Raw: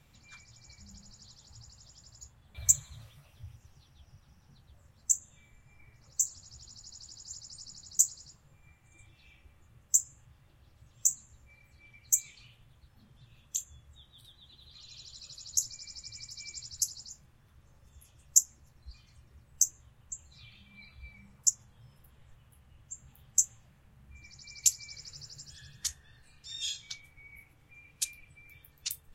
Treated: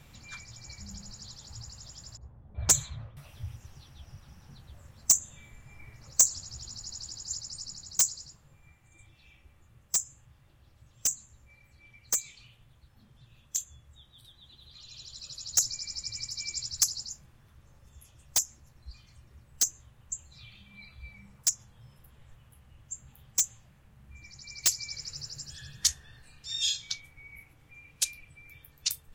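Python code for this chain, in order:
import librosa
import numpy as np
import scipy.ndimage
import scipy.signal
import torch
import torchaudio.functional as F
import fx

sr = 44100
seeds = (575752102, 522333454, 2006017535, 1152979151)

y = 10.0 ** (-21.5 / 20.0) * (np.abs((x / 10.0 ** (-21.5 / 20.0) + 3.0) % 4.0 - 2.0) - 1.0)
y = fx.dynamic_eq(y, sr, hz=4800.0, q=1.1, threshold_db=-47.0, ratio=4.0, max_db=5)
y = fx.rider(y, sr, range_db=4, speed_s=2.0)
y = fx.env_lowpass(y, sr, base_hz=590.0, full_db=-24.0, at=(2.17, 3.17))
y = y * librosa.db_to_amplitude(4.5)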